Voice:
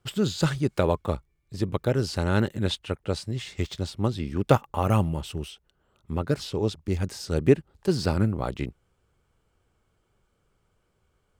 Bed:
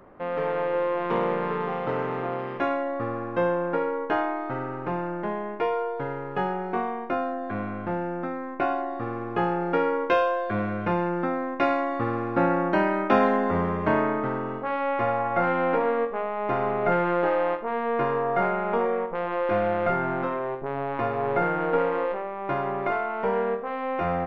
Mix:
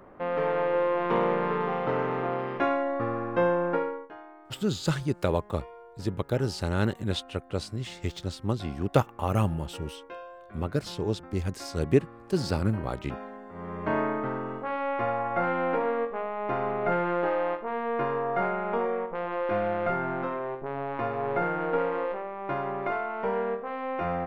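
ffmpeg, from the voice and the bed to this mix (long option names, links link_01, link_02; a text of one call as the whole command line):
ffmpeg -i stem1.wav -i stem2.wav -filter_complex "[0:a]adelay=4450,volume=-3dB[link_01];[1:a]volume=17dB,afade=type=out:start_time=3.71:duration=0.38:silence=0.0944061,afade=type=in:start_time=13.53:duration=0.47:silence=0.141254[link_02];[link_01][link_02]amix=inputs=2:normalize=0" out.wav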